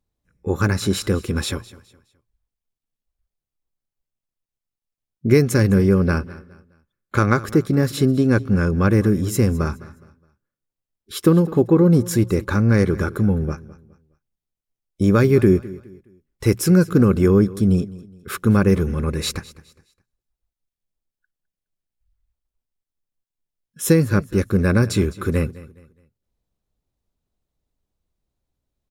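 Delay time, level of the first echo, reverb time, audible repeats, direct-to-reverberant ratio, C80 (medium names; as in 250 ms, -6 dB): 208 ms, -19.0 dB, no reverb, 2, no reverb, no reverb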